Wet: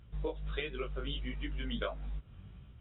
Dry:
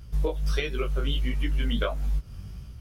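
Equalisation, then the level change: brick-wall FIR low-pass 3.9 kHz; bass shelf 79 Hz -8.5 dB; -7.5 dB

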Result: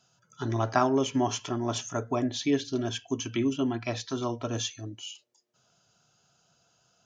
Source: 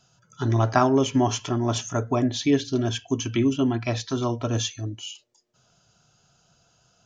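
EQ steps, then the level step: high-pass 170 Hz 6 dB/octave; -4.0 dB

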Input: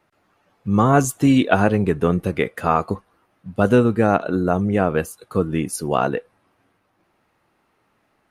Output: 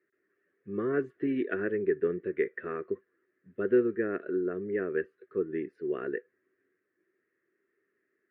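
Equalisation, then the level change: two resonant band-passes 830 Hz, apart 2.2 oct; distance through air 440 m; 0.0 dB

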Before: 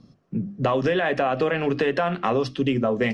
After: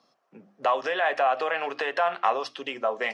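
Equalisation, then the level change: resonant high-pass 780 Hz, resonance Q 1.7; -2.0 dB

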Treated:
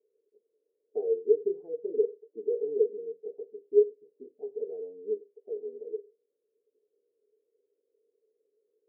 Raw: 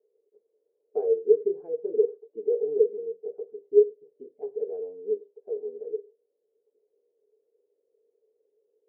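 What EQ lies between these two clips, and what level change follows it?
band-pass filter 270 Hz, Q 1.2; 0.0 dB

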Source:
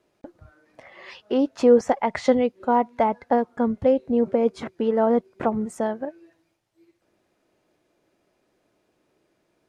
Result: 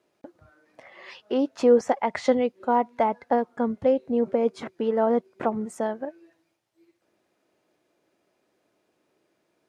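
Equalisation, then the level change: high-pass 180 Hz 6 dB/octave; -1.5 dB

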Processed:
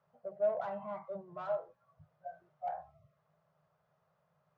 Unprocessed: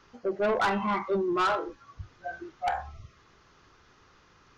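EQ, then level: two resonant band-passes 310 Hz, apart 2 oct; tilt EQ +1.5 dB/octave; 0.0 dB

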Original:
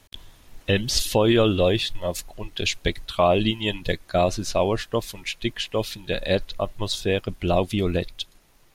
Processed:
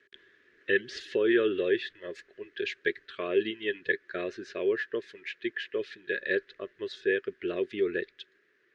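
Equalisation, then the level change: two resonant band-passes 820 Hz, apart 2.1 oct; distance through air 110 m; tilt EQ +2 dB/octave; +5.5 dB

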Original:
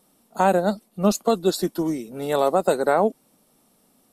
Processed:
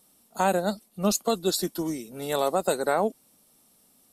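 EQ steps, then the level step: peaking EQ 67 Hz +6.5 dB 1.3 oct; treble shelf 2.4 kHz +9.5 dB; -6.0 dB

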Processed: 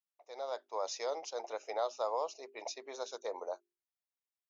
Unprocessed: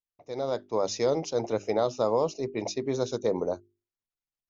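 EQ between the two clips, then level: ladder high-pass 540 Hz, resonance 25%; -1.0 dB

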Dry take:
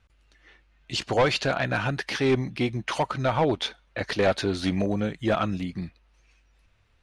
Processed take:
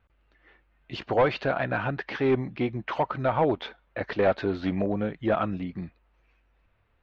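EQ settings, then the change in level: distance through air 81 m; tape spacing loss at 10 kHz 34 dB; bass shelf 270 Hz -8.5 dB; +4.0 dB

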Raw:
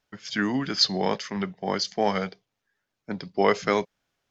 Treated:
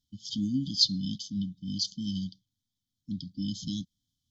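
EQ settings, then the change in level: brick-wall FIR band-stop 300–3000 Hz; peaking EQ 86 Hz +9 dB 0.76 oct; -2.0 dB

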